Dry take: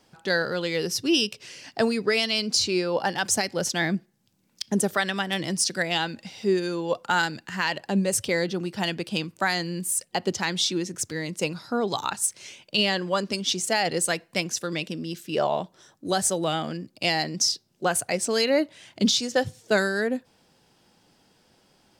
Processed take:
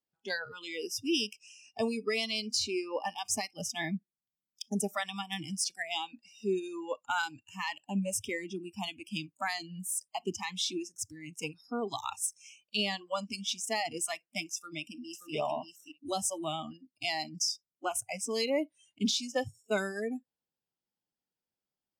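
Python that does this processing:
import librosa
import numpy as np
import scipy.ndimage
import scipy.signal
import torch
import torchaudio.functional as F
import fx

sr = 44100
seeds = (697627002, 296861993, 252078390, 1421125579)

y = fx.echo_throw(x, sr, start_s=14.55, length_s=0.78, ms=580, feedback_pct=10, wet_db=-3.5)
y = fx.noise_reduce_blind(y, sr, reduce_db=27)
y = F.gain(torch.from_numpy(y), -8.0).numpy()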